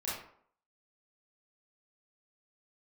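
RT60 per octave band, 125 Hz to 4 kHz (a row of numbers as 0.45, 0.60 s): 0.50, 0.60, 0.60, 0.60, 0.45, 0.35 s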